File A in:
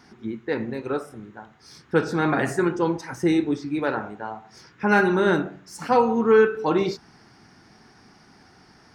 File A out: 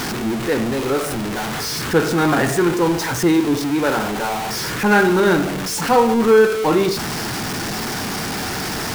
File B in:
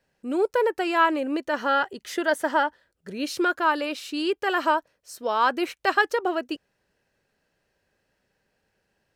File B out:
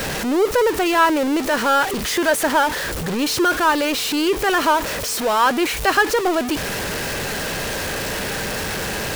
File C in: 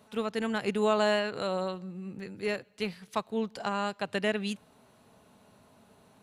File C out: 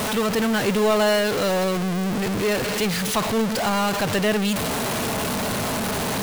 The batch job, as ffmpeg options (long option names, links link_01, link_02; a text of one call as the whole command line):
ffmpeg -i in.wav -af "aeval=exprs='val(0)+0.5*0.0841*sgn(val(0))':channel_layout=same,aeval=exprs='val(0)+0.00708*sin(2*PI*450*n/s)':channel_layout=same,volume=2.5dB" out.wav